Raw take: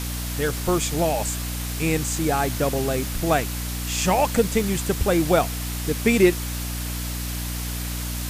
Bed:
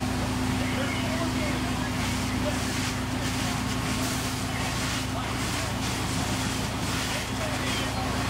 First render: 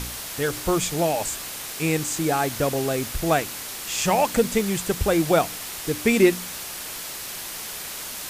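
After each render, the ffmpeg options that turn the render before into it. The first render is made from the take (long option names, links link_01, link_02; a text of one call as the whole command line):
ffmpeg -i in.wav -af "bandreject=frequency=60:width_type=h:width=4,bandreject=frequency=120:width_type=h:width=4,bandreject=frequency=180:width_type=h:width=4,bandreject=frequency=240:width_type=h:width=4,bandreject=frequency=300:width_type=h:width=4" out.wav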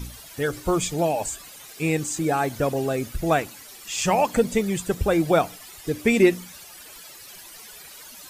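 ffmpeg -i in.wav -af "afftdn=noise_reduction=14:noise_floor=-34" out.wav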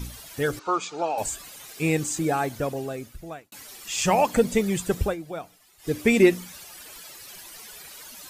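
ffmpeg -i in.wav -filter_complex "[0:a]asettb=1/sr,asplit=3[link_01][link_02][link_03];[link_01]atrim=end=0.594[link_04];[link_02]atrim=start=0.59:end=1.18,asetpts=PTS-STARTPTS,afade=type=in:duration=0.004:curve=qsin,afade=type=out:start_time=0.586:duration=0.004:curve=qsin,highpass=490,equalizer=frequency=610:width_type=q:width=4:gain=-7,equalizer=frequency=870:width_type=q:width=4:gain=3,equalizer=frequency=1300:width_type=q:width=4:gain=10,equalizer=frequency=1900:width_type=q:width=4:gain=-10,equalizer=frequency=3300:width_type=q:width=4:gain=-6,equalizer=frequency=5100:width_type=q:width=4:gain=-4,lowpass=frequency=5600:width=0.5412,lowpass=frequency=5600:width=1.3066[link_05];[link_03]atrim=start=1.176[link_06];[link_04][link_05]acrossfade=duration=0.004:curve1=hsin:curve2=qsin[link_07];[link_07][link_06]acrossfade=duration=0.004:curve1=qsin:curve2=hsin,asplit=4[link_08][link_09][link_10][link_11];[link_08]atrim=end=3.52,asetpts=PTS-STARTPTS,afade=type=out:start_time=2.09:duration=1.43[link_12];[link_09]atrim=start=3.52:end=5.16,asetpts=PTS-STARTPTS,afade=type=in:duration=0.004:curve=hsin,afade=type=out:start_time=1.51:duration=0.13:silence=0.16788[link_13];[link_10]atrim=start=5.16:end=5.78,asetpts=PTS-STARTPTS,volume=-15.5dB[link_14];[link_11]atrim=start=5.78,asetpts=PTS-STARTPTS,afade=type=in:duration=0.13:silence=0.16788[link_15];[link_12][link_13][link_14][link_15]concat=n=4:v=0:a=1" out.wav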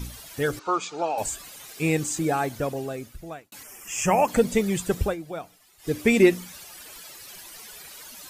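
ffmpeg -i in.wav -filter_complex "[0:a]asettb=1/sr,asplit=3[link_01][link_02][link_03];[link_01]atrim=end=3.634[link_04];[link_02]atrim=start=3.63:end=4.28,asetpts=PTS-STARTPTS,afade=type=in:duration=0.004:curve=qsin,afade=type=out:start_time=0.646:duration=0.004:curve=qsin,asuperstop=centerf=4000:order=4:qfactor=1.5[link_05];[link_03]atrim=start=4.276[link_06];[link_04][link_05]acrossfade=duration=0.004:curve1=hsin:curve2=qsin[link_07];[link_07][link_06]acrossfade=duration=0.004:curve1=qsin:curve2=hsin" out.wav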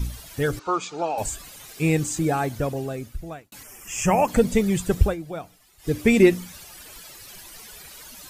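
ffmpeg -i in.wav -af "lowshelf=frequency=140:gain=11" out.wav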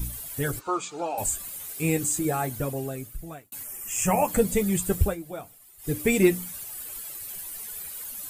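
ffmpeg -i in.wav -af "aexciter=amount=5.4:drive=2.1:freq=7700,flanger=delay=6.4:depth=4.9:regen=-39:speed=0.32:shape=triangular" out.wav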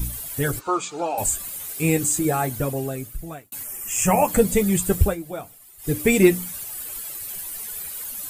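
ffmpeg -i in.wav -af "volume=4.5dB" out.wav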